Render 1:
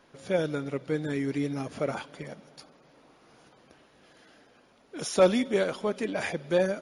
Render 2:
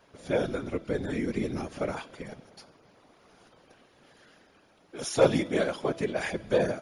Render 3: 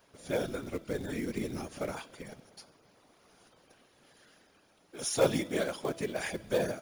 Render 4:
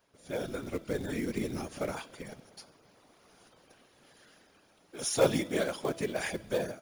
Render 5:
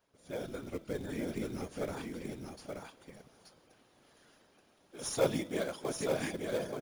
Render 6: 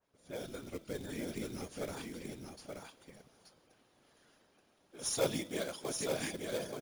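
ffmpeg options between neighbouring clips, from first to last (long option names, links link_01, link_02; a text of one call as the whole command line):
ffmpeg -i in.wav -af "afftfilt=real='hypot(re,im)*cos(2*PI*random(0))':imag='hypot(re,im)*sin(2*PI*random(1))':win_size=512:overlap=0.75,bandreject=frequency=331.3:width_type=h:width=4,bandreject=frequency=662.6:width_type=h:width=4,bandreject=frequency=993.9:width_type=h:width=4,bandreject=frequency=1325.2:width_type=h:width=4,bandreject=frequency=1656.5:width_type=h:width=4,bandreject=frequency=1987.8:width_type=h:width=4,bandreject=frequency=2319.1:width_type=h:width=4,bandreject=frequency=2650.4:width_type=h:width=4,bandreject=frequency=2981.7:width_type=h:width=4,bandreject=frequency=3313:width_type=h:width=4,bandreject=frequency=3644.3:width_type=h:width=4,bandreject=frequency=3975.6:width_type=h:width=4,bandreject=frequency=4306.9:width_type=h:width=4,bandreject=frequency=4638.2:width_type=h:width=4,bandreject=frequency=4969.5:width_type=h:width=4,bandreject=frequency=5300.8:width_type=h:width=4,bandreject=frequency=5632.1:width_type=h:width=4,bandreject=frequency=5963.4:width_type=h:width=4,bandreject=frequency=6294.7:width_type=h:width=4,bandreject=frequency=6626:width_type=h:width=4,bandreject=frequency=6957.3:width_type=h:width=4,bandreject=frequency=7288.6:width_type=h:width=4,bandreject=frequency=7619.9:width_type=h:width=4,bandreject=frequency=7951.2:width_type=h:width=4,bandreject=frequency=8282.5:width_type=h:width=4,bandreject=frequency=8613.8:width_type=h:width=4,bandreject=frequency=8945.1:width_type=h:width=4,bandreject=frequency=9276.4:width_type=h:width=4,bandreject=frequency=9607.7:width_type=h:width=4,bandreject=frequency=9939:width_type=h:width=4,bandreject=frequency=10270.3:width_type=h:width=4,bandreject=frequency=10601.6:width_type=h:width=4,volume=5.5dB" out.wav
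ffmpeg -i in.wav -af "crystalizer=i=1.5:c=0,acrusher=bits=5:mode=log:mix=0:aa=0.000001,volume=-5dB" out.wav
ffmpeg -i in.wav -af "dynaudnorm=framelen=130:gausssize=7:maxgain=8.5dB,volume=-7dB" out.wav
ffmpeg -i in.wav -filter_complex "[0:a]asplit=2[link_01][link_02];[link_02]acrusher=samples=16:mix=1:aa=0.000001,volume=-12dB[link_03];[link_01][link_03]amix=inputs=2:normalize=0,aecho=1:1:878:0.596,volume=-6dB" out.wav
ffmpeg -i in.wav -af "adynamicequalizer=threshold=0.002:dfrequency=2500:dqfactor=0.7:tfrequency=2500:tqfactor=0.7:attack=5:release=100:ratio=0.375:range=3.5:mode=boostabove:tftype=highshelf,volume=-3.5dB" out.wav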